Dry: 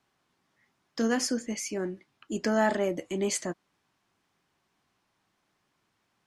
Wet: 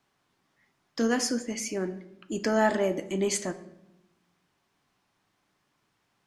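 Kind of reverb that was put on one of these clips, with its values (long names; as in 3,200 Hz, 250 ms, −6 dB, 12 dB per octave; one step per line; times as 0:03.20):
rectangular room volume 280 cubic metres, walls mixed, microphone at 0.33 metres
level +1 dB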